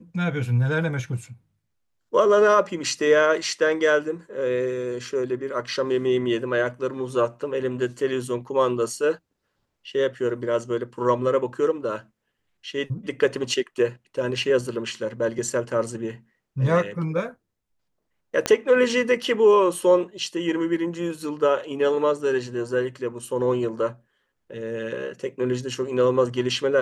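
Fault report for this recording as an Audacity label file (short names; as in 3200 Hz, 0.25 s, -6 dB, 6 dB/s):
18.460000	18.460000	pop -7 dBFS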